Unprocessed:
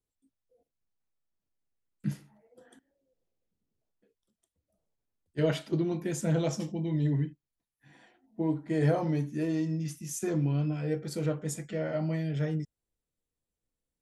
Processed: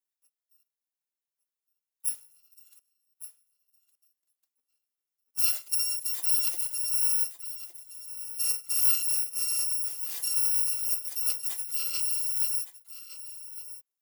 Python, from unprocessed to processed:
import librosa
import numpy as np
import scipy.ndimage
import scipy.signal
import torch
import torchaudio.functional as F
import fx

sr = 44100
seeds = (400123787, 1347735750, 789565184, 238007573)

p1 = fx.bit_reversed(x, sr, seeds[0], block=256)
p2 = scipy.signal.sosfilt(scipy.signal.butter(6, 280.0, 'highpass', fs=sr, output='sos'), p1)
p3 = fx.high_shelf(p2, sr, hz=7900.0, db=8.0)
p4 = fx.quant_float(p3, sr, bits=2)
p5 = p3 + (p4 * librosa.db_to_amplitude(-7.0))
p6 = p5 + 10.0 ** (-13.5 / 20.0) * np.pad(p5, (int(1162 * sr / 1000.0), 0))[:len(p5)]
y = p6 * librosa.db_to_amplitude(-8.0)